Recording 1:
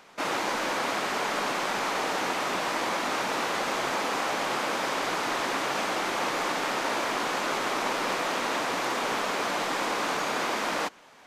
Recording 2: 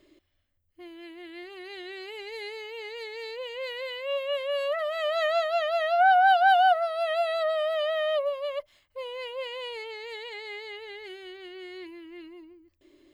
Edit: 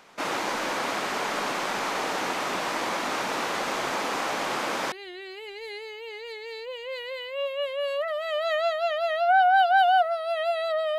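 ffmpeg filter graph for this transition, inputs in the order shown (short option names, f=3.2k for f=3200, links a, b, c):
-filter_complex "[1:a]asplit=2[a][b];[0:a]apad=whole_dur=10.98,atrim=end=10.98,atrim=end=4.922[c];[b]atrim=start=1.628:end=7.69[d];[a]atrim=start=0.72:end=1.63,asetpts=PTS-STARTPTS,volume=-7dB,afade=t=in:d=0.004:c=hsin,afade=t=out:st=0.906:d=0.004:c=hsin,adelay=176841S[e];[c][d]acrossfade=d=0.004:c1=hsin:c2=hsin[f];[f][e]amix=inputs=2:normalize=0"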